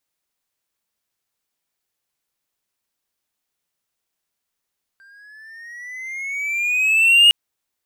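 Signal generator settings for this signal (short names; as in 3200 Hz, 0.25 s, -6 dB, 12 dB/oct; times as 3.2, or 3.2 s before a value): gliding synth tone triangle, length 2.31 s, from 1570 Hz, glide +10.5 st, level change +39 dB, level -5 dB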